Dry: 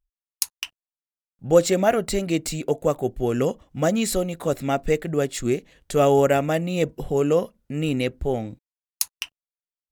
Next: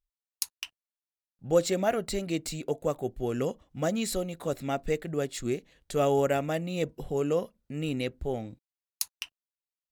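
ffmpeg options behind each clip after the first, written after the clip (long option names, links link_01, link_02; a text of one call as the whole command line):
ffmpeg -i in.wav -af "equalizer=frequency=4100:width_type=o:width=0.55:gain=3,volume=-7.5dB" out.wav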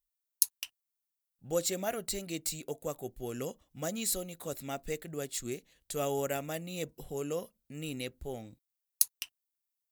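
ffmpeg -i in.wav -af "aemphasis=mode=production:type=75kf,volume=-8.5dB" out.wav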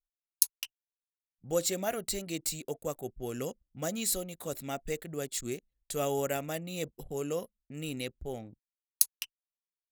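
ffmpeg -i in.wav -af "anlmdn=0.00251,volume=1.5dB" out.wav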